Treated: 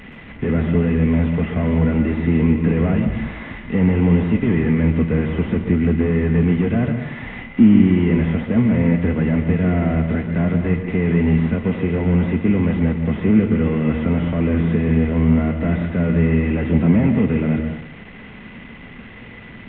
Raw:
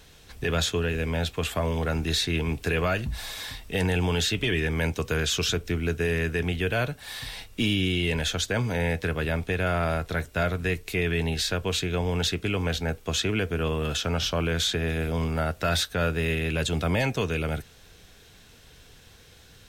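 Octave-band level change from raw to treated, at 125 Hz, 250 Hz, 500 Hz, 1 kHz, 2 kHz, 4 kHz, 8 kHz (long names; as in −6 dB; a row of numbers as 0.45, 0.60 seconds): +10.0 dB, +15.0 dB, +5.0 dB, +0.5 dB, −0.5 dB, below −10 dB, below −40 dB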